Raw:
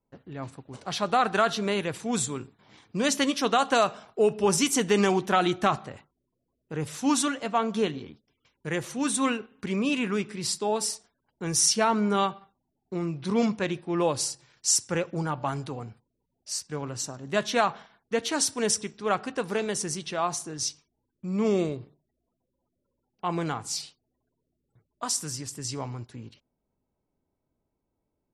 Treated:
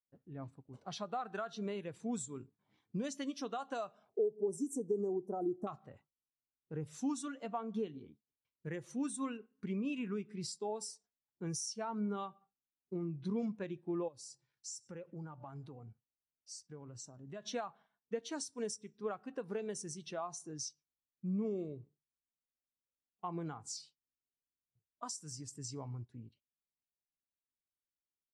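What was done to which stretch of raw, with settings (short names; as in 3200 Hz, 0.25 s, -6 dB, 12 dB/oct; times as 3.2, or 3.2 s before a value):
4.09–5.67 EQ curve 180 Hz 0 dB, 410 Hz +6 dB, 1000 Hz -5 dB, 2100 Hz -24 dB, 3400 Hz -26 dB, 5200 Hz -10 dB, 8800 Hz +2 dB
14.08–17.46 compressor 3:1, threshold -37 dBFS
whole clip: dynamic EQ 7000 Hz, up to +4 dB, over -43 dBFS, Q 0.93; compressor 6:1, threshold -30 dBFS; spectral expander 1.5:1; gain -7 dB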